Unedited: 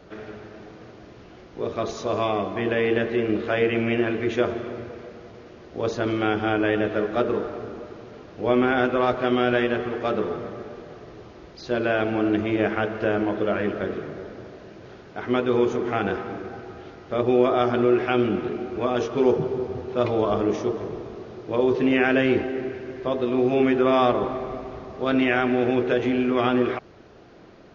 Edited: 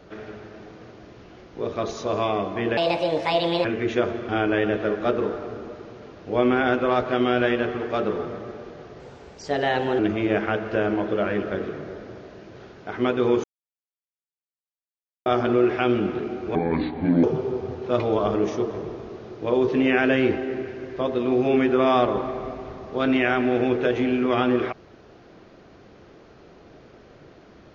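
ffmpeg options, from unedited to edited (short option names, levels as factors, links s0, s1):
-filter_complex "[0:a]asplit=10[s0][s1][s2][s3][s4][s5][s6][s7][s8][s9];[s0]atrim=end=2.774[s10];[s1]atrim=start=2.77:end=4.06,asetpts=PTS-STARTPTS,asetrate=64827,aresample=44100[s11];[s2]atrim=start=4.056:end=4.702[s12];[s3]atrim=start=6.398:end=11.114[s13];[s4]atrim=start=11.11:end=12.28,asetpts=PTS-STARTPTS,asetrate=52038,aresample=44100,atrim=end_sample=43726,asetpts=PTS-STARTPTS[s14];[s5]atrim=start=12.276:end=15.73,asetpts=PTS-STARTPTS,afade=t=out:st=3.45:d=0.004:c=hsin[s15];[s6]atrim=start=15.73:end=17.55,asetpts=PTS-STARTPTS,volume=0[s16];[s7]atrim=start=17.55:end=18.844,asetpts=PTS-STARTPTS,afade=t=in:d=0.004:c=hsin[s17];[s8]atrim=start=18.84:end=19.3,asetpts=PTS-STARTPTS,asetrate=29547,aresample=44100[s18];[s9]atrim=start=19.296[s19];[s10][s11]acrossfade=d=0.004:c1=hsin:c2=hsin[s20];[s20][s12]acrossfade=d=0.004:c1=hsin:c2=hsin[s21];[s21][s13]acrossfade=d=0.004:c1=hsin:c2=hsin[s22];[s22][s14]acrossfade=d=0.004:c1=hsin:c2=hsin[s23];[s15][s16][s17]concat=n=3:v=0:a=1[s24];[s23][s24]acrossfade=d=0.004:c1=hsin:c2=hsin[s25];[s25][s18]acrossfade=d=0.004:c1=hsin:c2=hsin[s26];[s26][s19]acrossfade=d=0.004:c1=hsin:c2=hsin"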